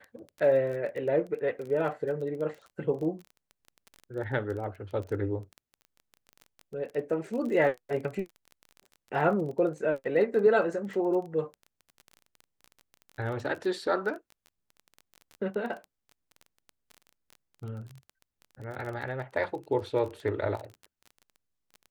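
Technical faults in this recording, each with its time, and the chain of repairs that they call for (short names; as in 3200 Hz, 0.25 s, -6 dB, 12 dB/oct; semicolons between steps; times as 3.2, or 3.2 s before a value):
crackle 20/s -36 dBFS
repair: de-click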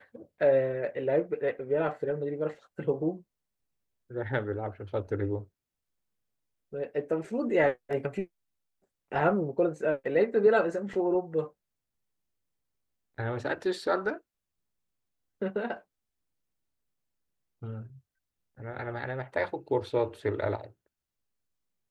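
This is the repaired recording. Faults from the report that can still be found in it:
none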